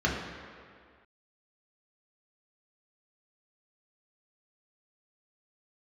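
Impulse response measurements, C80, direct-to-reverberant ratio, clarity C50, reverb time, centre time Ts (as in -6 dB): 4.5 dB, -3.5 dB, 2.5 dB, 2.0 s, 73 ms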